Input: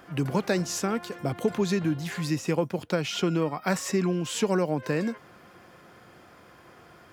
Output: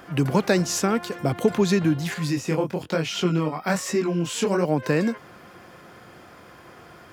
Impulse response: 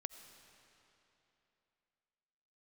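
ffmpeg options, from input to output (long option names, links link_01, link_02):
-filter_complex "[0:a]asettb=1/sr,asplit=3[link_01][link_02][link_03];[link_01]atrim=end=2.144[link_04];[link_02]atrim=start=2.14:end=4.65,asetpts=PTS-STARTPTS,afade=type=in:duration=0.004:curve=qsin,afade=type=out:start_time=2.506:duration=0.004:curve=qsin,flanger=delay=18.5:depth=7.7:speed=1.1[link_05];[link_03]atrim=start=4.646[link_06];[link_04][link_05]acrossfade=duration=0.004:curve1=hsin:curve2=qsin[link_07];[link_07][link_06]acrossfade=duration=0.004:curve1=qsin:curve2=hsin,volume=5.5dB"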